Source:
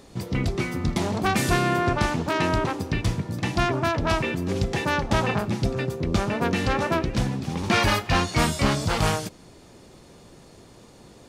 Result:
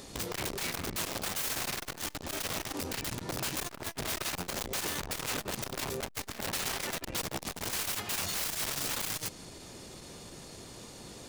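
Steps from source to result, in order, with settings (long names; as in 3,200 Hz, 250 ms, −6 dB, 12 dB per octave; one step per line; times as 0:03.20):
0:06.00–0:08.26: high-pass filter 48 Hz 12 dB per octave
downward compressor 3 to 1, threshold −28 dBFS, peak gain reduction 9 dB
high-shelf EQ 2,500 Hz +9 dB
wrap-around overflow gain 27 dB
saturating transformer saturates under 240 Hz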